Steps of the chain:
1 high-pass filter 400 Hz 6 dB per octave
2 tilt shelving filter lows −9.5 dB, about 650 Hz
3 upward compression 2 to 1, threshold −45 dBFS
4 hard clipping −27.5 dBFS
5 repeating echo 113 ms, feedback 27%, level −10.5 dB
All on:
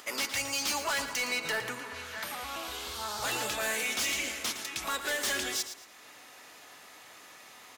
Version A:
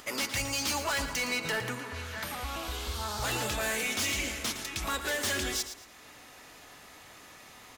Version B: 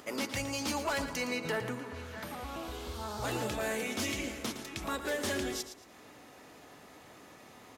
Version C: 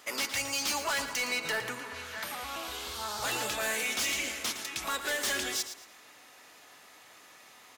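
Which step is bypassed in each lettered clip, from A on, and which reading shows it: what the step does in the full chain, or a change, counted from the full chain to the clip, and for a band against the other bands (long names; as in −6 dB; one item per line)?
1, 125 Hz band +11.5 dB
2, 125 Hz band +13.0 dB
3, change in momentary loudness spread −12 LU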